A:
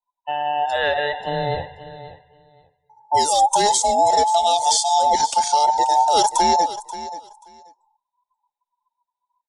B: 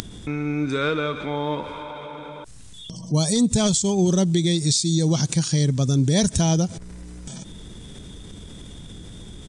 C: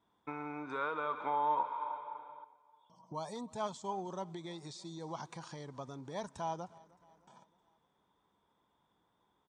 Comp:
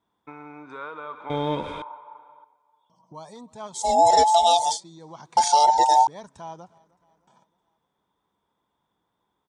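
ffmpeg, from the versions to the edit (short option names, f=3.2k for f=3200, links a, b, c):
-filter_complex "[0:a]asplit=2[a][b];[2:a]asplit=4[c][d][e][f];[c]atrim=end=1.302[g];[1:a]atrim=start=1.298:end=1.822[h];[d]atrim=start=1.818:end=3.97[i];[a]atrim=start=3.73:end=4.81[j];[e]atrim=start=4.57:end=5.372[k];[b]atrim=start=5.368:end=6.072[l];[f]atrim=start=6.068[m];[g][h]acrossfade=d=0.004:c1=hsin:c2=hsin[n];[n][i]acrossfade=d=0.004:c1=hsin:c2=hsin[o];[o][j]acrossfade=d=0.24:c1=tri:c2=tri[p];[p][k]acrossfade=d=0.24:c1=tri:c2=tri[q];[q][l]acrossfade=d=0.004:c1=hsin:c2=hsin[r];[r][m]acrossfade=d=0.004:c1=hsin:c2=hsin"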